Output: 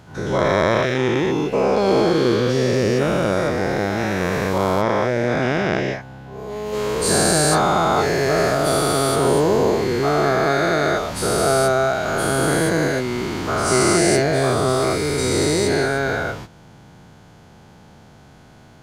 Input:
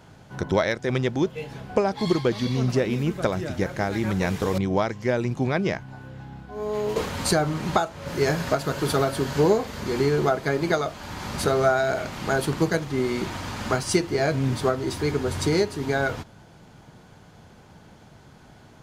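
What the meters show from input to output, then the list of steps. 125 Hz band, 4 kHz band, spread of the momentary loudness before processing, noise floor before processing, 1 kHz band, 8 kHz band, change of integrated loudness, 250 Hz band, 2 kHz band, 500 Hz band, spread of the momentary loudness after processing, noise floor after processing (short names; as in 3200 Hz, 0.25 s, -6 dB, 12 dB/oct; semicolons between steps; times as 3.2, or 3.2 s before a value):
+3.5 dB, +7.5 dB, 8 LU, -50 dBFS, +7.5 dB, +11.5 dB, +6.0 dB, +5.0 dB, +7.0 dB, +6.5 dB, 7 LU, -46 dBFS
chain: spectral dilation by 0.48 s; dynamic EQ 8900 Hz, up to +5 dB, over -41 dBFS, Q 3.1; gain -3 dB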